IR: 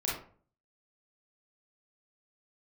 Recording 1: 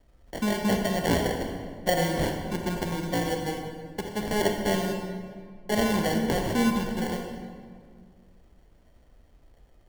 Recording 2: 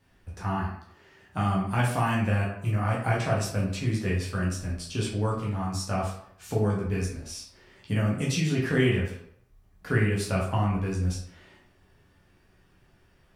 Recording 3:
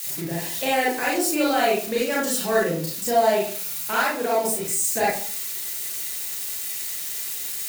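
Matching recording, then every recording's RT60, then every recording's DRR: 3; 2.0 s, 0.70 s, 0.45 s; 3.0 dB, -5.5 dB, -6.0 dB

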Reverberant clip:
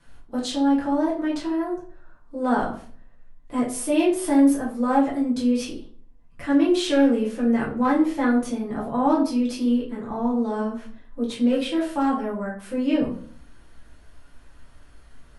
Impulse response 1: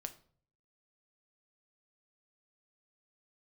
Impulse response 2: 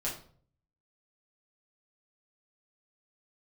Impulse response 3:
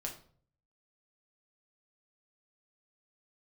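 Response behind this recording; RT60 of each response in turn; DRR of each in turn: 2; 0.50 s, 0.50 s, 0.50 s; 7.5 dB, -6.5 dB, -0.5 dB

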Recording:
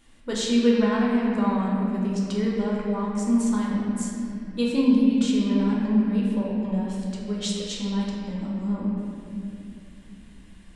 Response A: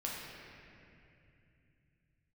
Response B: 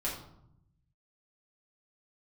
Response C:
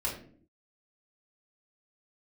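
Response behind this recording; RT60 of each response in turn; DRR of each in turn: A; 2.6 s, 0.75 s, 0.55 s; -5.0 dB, -7.0 dB, -6.0 dB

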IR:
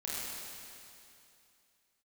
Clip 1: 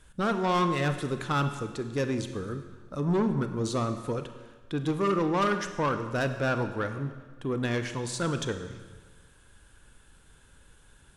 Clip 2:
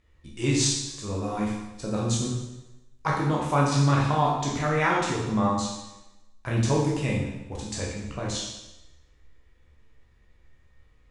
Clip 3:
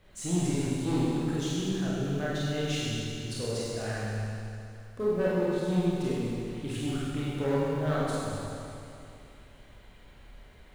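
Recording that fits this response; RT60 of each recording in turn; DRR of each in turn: 3; 1.4 s, 1.0 s, 2.7 s; 8.0 dB, -4.5 dB, -8.0 dB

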